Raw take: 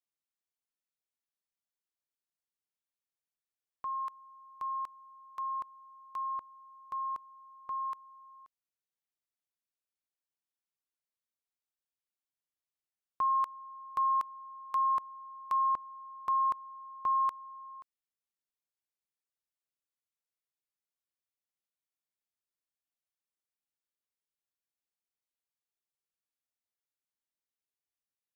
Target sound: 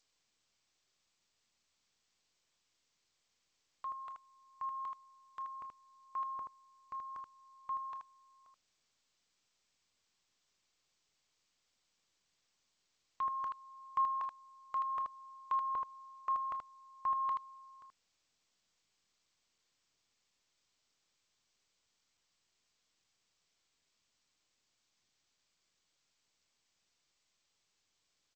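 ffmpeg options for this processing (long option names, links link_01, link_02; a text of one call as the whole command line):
ffmpeg -i in.wav -af "aecho=1:1:26|38|79:0.188|0.133|0.562,aphaser=in_gain=1:out_gain=1:delay=2.1:decay=0.32:speed=0.16:type=triangular,volume=-3.5dB" -ar 16000 -c:a g722 out.g722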